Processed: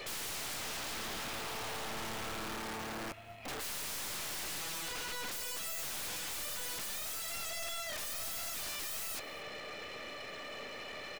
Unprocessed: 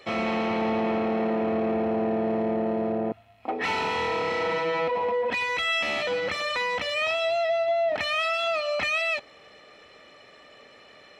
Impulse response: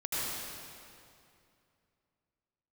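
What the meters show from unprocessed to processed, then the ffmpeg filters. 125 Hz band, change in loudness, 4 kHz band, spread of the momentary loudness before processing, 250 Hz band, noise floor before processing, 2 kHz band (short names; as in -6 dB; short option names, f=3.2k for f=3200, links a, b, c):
-11.5 dB, -12.5 dB, -7.5 dB, 3 LU, -20.5 dB, -52 dBFS, -13.5 dB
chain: -filter_complex "[0:a]highpass=f=64:w=0.5412,highpass=f=64:w=1.3066,equalizer=f=2.4k:w=3:g=2.5,acrossover=split=1400[a][b];[a]acompressor=threshold=-34dB:ratio=16[c];[b]alimiter=limit=-24dB:level=0:latency=1:release=24[d];[c][d]amix=inputs=2:normalize=0,acrusher=bits=5:mode=log:mix=0:aa=0.000001,aeval=exprs='(mod(44.7*val(0)+1,2)-1)/44.7':c=same,aeval=exprs='0.0211*(cos(1*acos(clip(val(0)/0.0211,-1,1)))-cos(1*PI/2))+0.00841*(cos(5*acos(clip(val(0)/0.0211,-1,1)))-cos(5*PI/2))+0.00335*(cos(8*acos(clip(val(0)/0.0211,-1,1)))-cos(8*PI/2))':c=same,aecho=1:1:232:0.0841,volume=-3dB"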